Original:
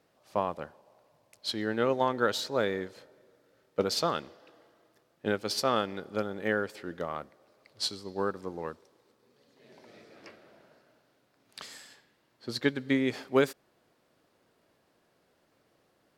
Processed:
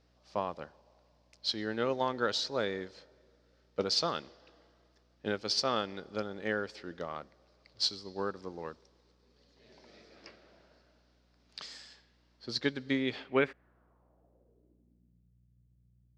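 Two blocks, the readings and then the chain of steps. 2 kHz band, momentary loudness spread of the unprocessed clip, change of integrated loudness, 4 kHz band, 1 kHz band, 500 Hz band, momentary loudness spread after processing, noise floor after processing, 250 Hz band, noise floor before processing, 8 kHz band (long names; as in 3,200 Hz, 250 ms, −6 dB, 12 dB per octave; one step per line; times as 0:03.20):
−3.0 dB, 16 LU, −3.0 dB, +1.5 dB, −4.0 dB, −4.5 dB, 15 LU, −69 dBFS, −4.5 dB, −71 dBFS, −2.5 dB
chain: mains hum 60 Hz, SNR 31 dB
low-pass filter sweep 5,200 Hz → 140 Hz, 0:12.89–0:15.34
level −4.5 dB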